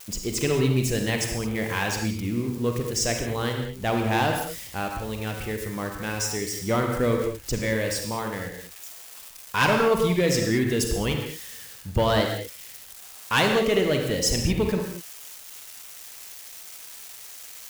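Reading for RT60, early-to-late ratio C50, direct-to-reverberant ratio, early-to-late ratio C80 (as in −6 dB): non-exponential decay, 3.5 dB, 2.5 dB, 5.5 dB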